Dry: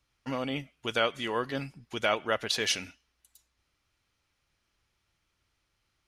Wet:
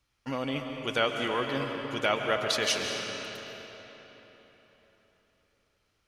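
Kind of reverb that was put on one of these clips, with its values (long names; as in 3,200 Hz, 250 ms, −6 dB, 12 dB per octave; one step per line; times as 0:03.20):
comb and all-pass reverb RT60 4.1 s, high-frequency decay 0.75×, pre-delay 95 ms, DRR 3 dB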